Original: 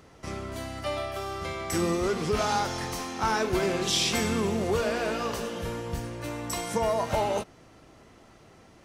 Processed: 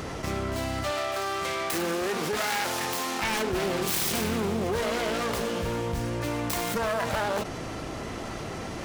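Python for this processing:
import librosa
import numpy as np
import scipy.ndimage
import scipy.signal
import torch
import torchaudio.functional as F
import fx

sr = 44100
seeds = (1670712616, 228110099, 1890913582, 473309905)

y = fx.self_delay(x, sr, depth_ms=0.42)
y = fx.highpass(y, sr, hz=400.0, slope=6, at=(0.91, 3.22))
y = fx.env_flatten(y, sr, amount_pct=70)
y = y * librosa.db_to_amplitude(-2.5)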